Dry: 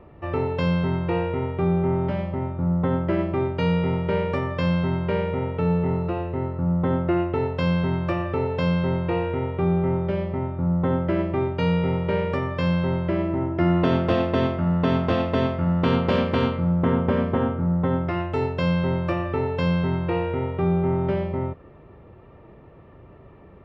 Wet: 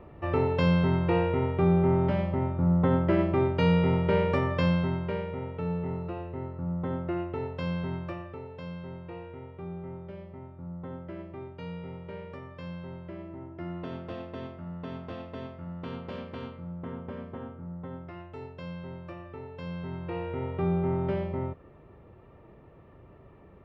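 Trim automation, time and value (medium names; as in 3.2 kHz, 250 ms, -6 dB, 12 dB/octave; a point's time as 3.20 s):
4.56 s -1 dB
5.26 s -9.5 dB
7.96 s -9.5 dB
8.42 s -17.5 dB
19.51 s -17.5 dB
20.56 s -5.5 dB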